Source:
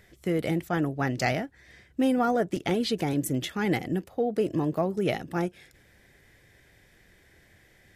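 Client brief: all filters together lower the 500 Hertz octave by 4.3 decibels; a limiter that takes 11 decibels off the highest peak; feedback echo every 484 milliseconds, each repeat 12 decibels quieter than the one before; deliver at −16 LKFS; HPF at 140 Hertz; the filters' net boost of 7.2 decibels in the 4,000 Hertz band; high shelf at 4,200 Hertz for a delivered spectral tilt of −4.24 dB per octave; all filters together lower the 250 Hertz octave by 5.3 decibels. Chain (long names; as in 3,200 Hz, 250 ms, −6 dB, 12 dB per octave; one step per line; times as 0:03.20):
high-pass filter 140 Hz
parametric band 250 Hz −5 dB
parametric band 500 Hz −4 dB
parametric band 4,000 Hz +5 dB
high-shelf EQ 4,200 Hz +7.5 dB
brickwall limiter −19.5 dBFS
repeating echo 484 ms, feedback 25%, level −12 dB
level +16 dB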